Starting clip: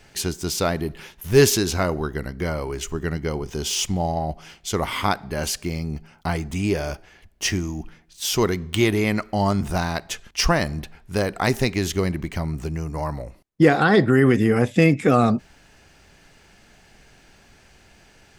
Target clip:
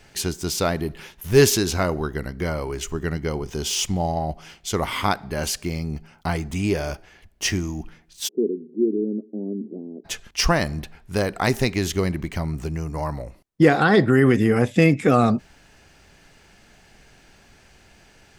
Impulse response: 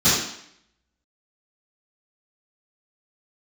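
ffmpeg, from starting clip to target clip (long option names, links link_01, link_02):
-filter_complex "[0:a]asplit=3[link_01][link_02][link_03];[link_01]afade=type=out:start_time=8.27:duration=0.02[link_04];[link_02]asuperpass=centerf=310:order=8:qfactor=1.3,afade=type=in:start_time=8.27:duration=0.02,afade=type=out:start_time=10.04:duration=0.02[link_05];[link_03]afade=type=in:start_time=10.04:duration=0.02[link_06];[link_04][link_05][link_06]amix=inputs=3:normalize=0"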